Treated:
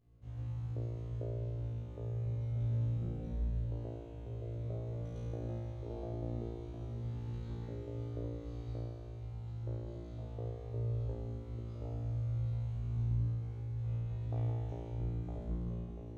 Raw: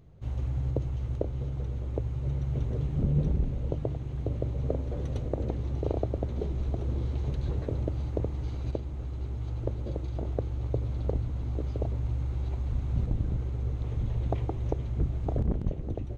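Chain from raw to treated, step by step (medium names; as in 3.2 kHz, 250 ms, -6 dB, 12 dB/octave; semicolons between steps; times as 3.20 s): 13.29–14.06 s: compressor with a negative ratio -32 dBFS; feedback comb 58 Hz, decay 1.9 s, harmonics all, mix 100%; trim +5.5 dB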